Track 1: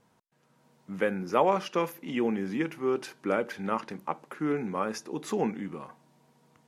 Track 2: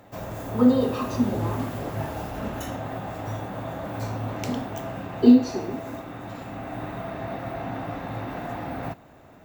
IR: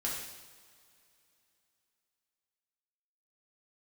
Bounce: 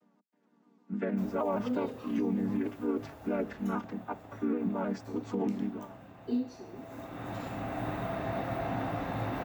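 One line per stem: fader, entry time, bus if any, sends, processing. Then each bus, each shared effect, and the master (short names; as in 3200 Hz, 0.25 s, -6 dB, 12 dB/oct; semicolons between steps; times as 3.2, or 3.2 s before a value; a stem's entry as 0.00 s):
+0.5 dB, 0.00 s, no send, chord vocoder minor triad, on G3; shaped vibrato saw down 6.4 Hz, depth 100 cents
-1.5 dB, 1.05 s, no send, auto duck -16 dB, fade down 1.85 s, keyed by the first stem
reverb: off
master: limiter -22.5 dBFS, peak gain reduction 9 dB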